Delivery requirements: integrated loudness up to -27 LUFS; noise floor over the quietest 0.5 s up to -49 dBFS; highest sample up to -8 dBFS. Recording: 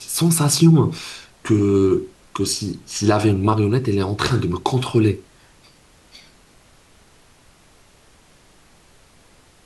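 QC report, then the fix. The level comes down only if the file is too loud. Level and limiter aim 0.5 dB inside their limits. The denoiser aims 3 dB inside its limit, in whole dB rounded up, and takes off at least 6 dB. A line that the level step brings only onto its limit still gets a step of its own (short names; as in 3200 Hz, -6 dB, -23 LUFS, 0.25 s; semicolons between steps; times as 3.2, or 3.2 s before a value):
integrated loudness -18.5 LUFS: fail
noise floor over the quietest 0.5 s -52 dBFS: OK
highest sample -3.5 dBFS: fail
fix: gain -9 dB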